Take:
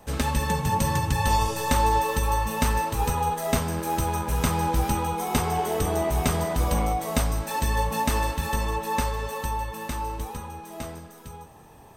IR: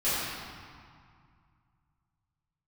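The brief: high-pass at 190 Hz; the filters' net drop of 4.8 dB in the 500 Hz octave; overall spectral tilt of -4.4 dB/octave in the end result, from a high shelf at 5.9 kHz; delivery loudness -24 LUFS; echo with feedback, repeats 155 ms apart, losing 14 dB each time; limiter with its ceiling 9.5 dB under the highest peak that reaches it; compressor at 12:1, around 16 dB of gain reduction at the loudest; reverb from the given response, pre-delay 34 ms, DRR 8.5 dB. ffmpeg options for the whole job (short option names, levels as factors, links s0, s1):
-filter_complex "[0:a]highpass=190,equalizer=f=500:t=o:g=-6,highshelf=f=5900:g=-7,acompressor=threshold=0.0126:ratio=12,alimiter=level_in=3.35:limit=0.0631:level=0:latency=1,volume=0.299,aecho=1:1:155|310:0.2|0.0399,asplit=2[s0][s1];[1:a]atrim=start_sample=2205,adelay=34[s2];[s1][s2]afir=irnorm=-1:irlink=0,volume=0.0944[s3];[s0][s3]amix=inputs=2:normalize=0,volume=8.41"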